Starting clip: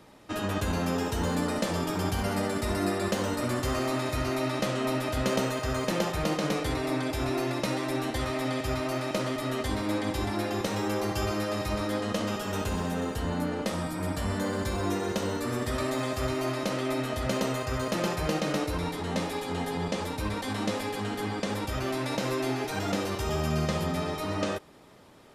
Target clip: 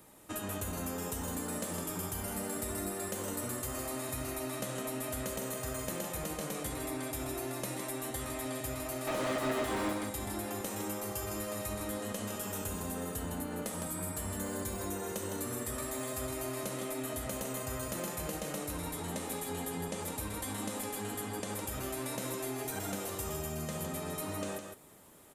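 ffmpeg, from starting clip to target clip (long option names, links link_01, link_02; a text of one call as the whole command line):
ffmpeg -i in.wav -filter_complex "[0:a]aexciter=amount=7.4:drive=2.6:freq=7100,acompressor=threshold=-29dB:ratio=6,asettb=1/sr,asplit=3[link_01][link_02][link_03];[link_01]atrim=end=9.074[link_04];[link_02]atrim=start=9.07:end=9.93,asetpts=PTS-STARTPTS,afade=type=in:duration=0.004:curve=qsin,afade=type=out:start_time=0.856:duration=0.004:curve=qsin,asplit=2[link_05][link_06];[link_06]highpass=frequency=720:poles=1,volume=29dB,asoftclip=type=tanh:threshold=-17.5dB[link_07];[link_05][link_07]amix=inputs=2:normalize=0,lowpass=frequency=1400:poles=1,volume=-6dB[link_08];[link_03]atrim=start=9.926[link_09];[link_04][link_08]acrossfade=duration=0.004:curve1=hsin:curve2=qsin[link_10];[link_10][link_09]acrossfade=duration=0.004:curve1=qsin:curve2=hsin,aecho=1:1:159:0.473,volume=-6dB" out.wav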